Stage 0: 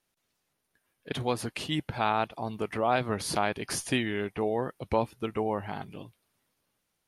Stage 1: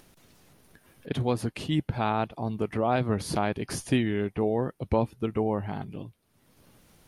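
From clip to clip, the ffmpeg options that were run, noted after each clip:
ffmpeg -i in.wav -af "lowshelf=frequency=470:gain=11,acompressor=mode=upward:threshold=-37dB:ratio=2.5,volume=-3.5dB" out.wav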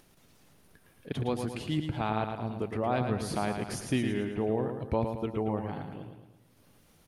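ffmpeg -i in.wav -af "aecho=1:1:111|222|333|444|555|666:0.473|0.237|0.118|0.0591|0.0296|0.0148,volume=-4.5dB" out.wav

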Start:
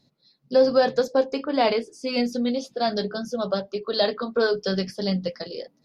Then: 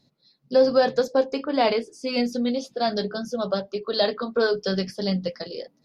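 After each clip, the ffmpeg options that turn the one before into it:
ffmpeg -i in.wav -af anull out.wav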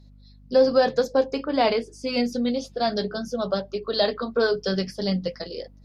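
ffmpeg -i in.wav -af "aeval=exprs='val(0)+0.00355*(sin(2*PI*50*n/s)+sin(2*PI*2*50*n/s)/2+sin(2*PI*3*50*n/s)/3+sin(2*PI*4*50*n/s)/4+sin(2*PI*5*50*n/s)/5)':channel_layout=same" out.wav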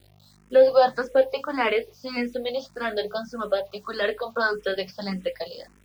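ffmpeg -i in.wav -filter_complex "[0:a]acrossover=split=520 3700:gain=0.251 1 0.0708[link_01][link_02][link_03];[link_01][link_02][link_03]amix=inputs=3:normalize=0,acrusher=bits=9:mix=0:aa=0.000001,asplit=2[link_04][link_05];[link_05]afreqshift=1.7[link_06];[link_04][link_06]amix=inputs=2:normalize=1,volume=7dB" out.wav

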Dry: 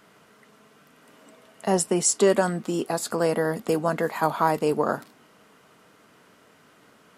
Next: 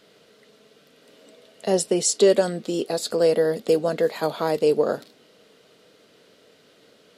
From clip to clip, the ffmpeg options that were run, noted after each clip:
ffmpeg -i in.wav -af "equalizer=frequency=500:width_type=o:width=1:gain=11,equalizer=frequency=1000:width_type=o:width=1:gain=-8,equalizer=frequency=4000:width_type=o:width=1:gain=12,volume=-3.5dB" out.wav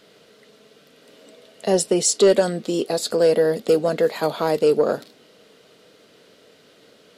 ffmpeg -i in.wav -af "asoftclip=type=tanh:threshold=-8.5dB,volume=3dB" out.wav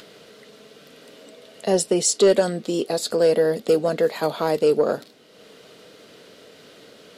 ffmpeg -i in.wav -af "acompressor=mode=upward:threshold=-38dB:ratio=2.5,volume=-1dB" out.wav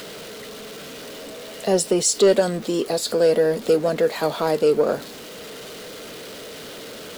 ffmpeg -i in.wav -af "aeval=exprs='val(0)+0.5*0.0211*sgn(val(0))':channel_layout=same" out.wav

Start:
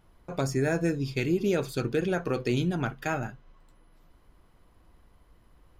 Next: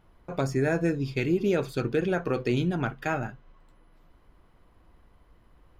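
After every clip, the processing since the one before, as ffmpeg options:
ffmpeg -i in.wav -af "bass=frequency=250:gain=-1,treble=frequency=4000:gain=-7,volume=1.5dB" out.wav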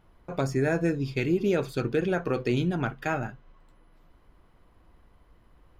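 ffmpeg -i in.wav -af anull out.wav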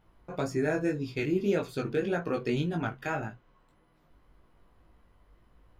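ffmpeg -i in.wav -af "flanger=delay=18:depth=3.3:speed=1.8" out.wav

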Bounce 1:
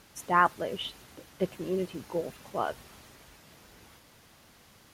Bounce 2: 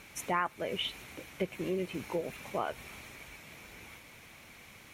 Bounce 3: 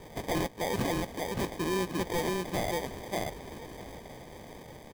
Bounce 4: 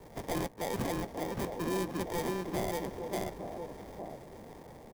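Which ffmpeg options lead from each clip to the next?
ffmpeg -i in.wav -af "equalizer=frequency=2300:width=4.3:gain=13.5,bandreject=frequency=4800:width=9.2,acompressor=threshold=-33dB:ratio=3,volume=2dB" out.wav
ffmpeg -i in.wav -af "acrusher=samples=32:mix=1:aa=0.000001,aecho=1:1:582:0.631,aeval=exprs='0.0376*(abs(mod(val(0)/0.0376+3,4)-2)-1)':channel_layout=same,volume=5dB" out.wav
ffmpeg -i in.wav -filter_complex "[0:a]acrossover=split=140|1100|2000[link_01][link_02][link_03][link_04];[link_02]aecho=1:1:861:0.562[link_05];[link_04]acrusher=bits=6:dc=4:mix=0:aa=0.000001[link_06];[link_01][link_05][link_03][link_06]amix=inputs=4:normalize=0,volume=-3.5dB" out.wav

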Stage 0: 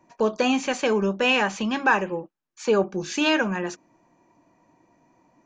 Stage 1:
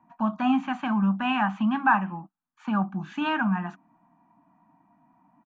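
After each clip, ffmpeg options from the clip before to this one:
ffmpeg -i in.wav -af "firequalizer=gain_entry='entry(100,0);entry(190,13);entry(280,8);entry(450,-30);entry(690,9);entry(1300,10);entry(2100,-2);entry(3100,-1);entry(5000,-20);entry(9400,-15)':delay=0.05:min_phase=1,volume=-8.5dB" out.wav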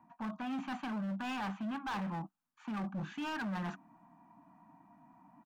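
ffmpeg -i in.wav -af "areverse,acompressor=threshold=-34dB:ratio=5,areverse,asoftclip=type=hard:threshold=-36dB,volume=1dB" out.wav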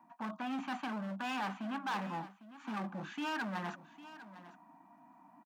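ffmpeg -i in.wav -af "highpass=250,aecho=1:1:803:0.168,volume=2dB" out.wav

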